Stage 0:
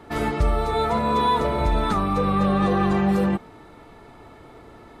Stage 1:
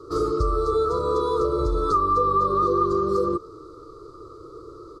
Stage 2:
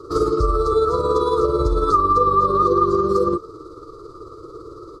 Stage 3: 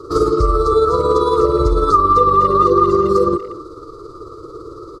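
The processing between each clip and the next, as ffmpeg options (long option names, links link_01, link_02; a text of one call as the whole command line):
ffmpeg -i in.wav -af "firequalizer=gain_entry='entry(120,0);entry(230,-19);entry(330,9);entry(490,7);entry(780,-29);entry(1200,14);entry(1700,-29);entry(2700,-25);entry(4500,6);entry(12000,-9)':delay=0.05:min_phase=1,acompressor=threshold=-20dB:ratio=2.5" out.wav
ffmpeg -i in.wav -af "tremolo=f=18:d=0.39,volume=6dB" out.wav
ffmpeg -i in.wav -filter_complex "[0:a]asplit=2[link_01][link_02];[link_02]adelay=240,highpass=300,lowpass=3400,asoftclip=type=hard:threshold=-13dB,volume=-15dB[link_03];[link_01][link_03]amix=inputs=2:normalize=0,volume=4dB" out.wav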